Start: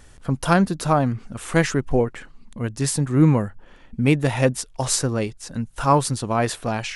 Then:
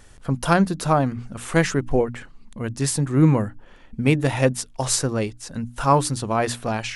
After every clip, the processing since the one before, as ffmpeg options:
ffmpeg -i in.wav -af "bandreject=frequency=60:width_type=h:width=6,bandreject=frequency=120:width_type=h:width=6,bandreject=frequency=180:width_type=h:width=6,bandreject=frequency=240:width_type=h:width=6,bandreject=frequency=300:width_type=h:width=6" out.wav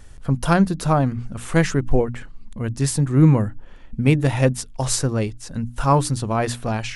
ffmpeg -i in.wav -af "lowshelf=frequency=140:gain=9.5,volume=-1dB" out.wav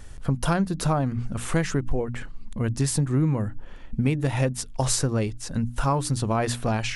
ffmpeg -i in.wav -af "acompressor=threshold=-21dB:ratio=6,volume=1.5dB" out.wav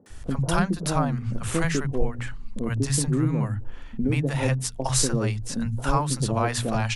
ffmpeg -i in.wav -filter_complex "[0:a]acrossover=split=170|600[link_01][link_02][link_03];[link_03]adelay=60[link_04];[link_01]adelay=100[link_05];[link_05][link_02][link_04]amix=inputs=3:normalize=0,volume=2dB" out.wav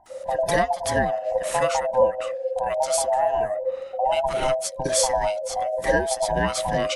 ffmpeg -i in.wav -af "afftfilt=real='real(if(lt(b,1008),b+24*(1-2*mod(floor(b/24),2)),b),0)':imag='imag(if(lt(b,1008),b+24*(1-2*mod(floor(b/24),2)),b),0)':win_size=2048:overlap=0.75,volume=1dB" out.wav

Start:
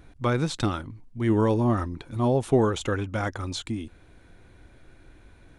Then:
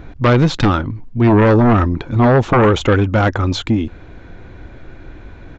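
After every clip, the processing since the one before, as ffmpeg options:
ffmpeg -i in.wav -af "aemphasis=mode=reproduction:type=75fm,aresample=16000,aeval=exprs='0.376*sin(PI/2*3.16*val(0)/0.376)':channel_layout=same,aresample=44100,volume=1.5dB" out.wav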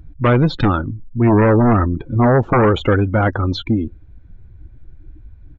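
ffmpeg -i in.wav -af "afftdn=noise_reduction=23:noise_floor=-25,volume=-1.5dB" out.wav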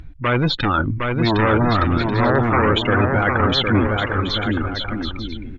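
ffmpeg -i in.wav -af "equalizer=frequency=2600:width_type=o:width=2.7:gain=11.5,areverse,acompressor=threshold=-20dB:ratio=6,areverse,aecho=1:1:760|1216|1490|1654|1752:0.631|0.398|0.251|0.158|0.1,volume=3.5dB" out.wav

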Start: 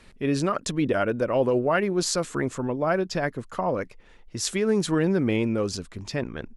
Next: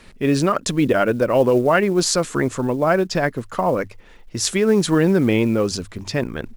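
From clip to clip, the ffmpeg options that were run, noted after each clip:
ffmpeg -i in.wav -af "bandreject=frequency=50:width_type=h:width=6,bandreject=frequency=100:width_type=h:width=6,acrusher=bits=8:mode=log:mix=0:aa=0.000001,volume=6.5dB" out.wav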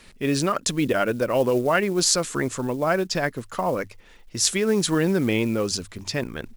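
ffmpeg -i in.wav -af "highshelf=frequency=2400:gain=7.5,volume=-5.5dB" out.wav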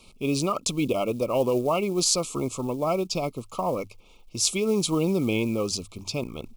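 ffmpeg -i in.wav -af "asuperstop=centerf=1700:order=20:qfactor=2,volume=-2.5dB" out.wav

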